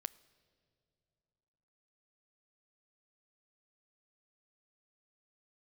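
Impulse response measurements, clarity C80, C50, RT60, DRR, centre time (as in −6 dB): 21.5 dB, 20.5 dB, non-exponential decay, 17.0 dB, 3 ms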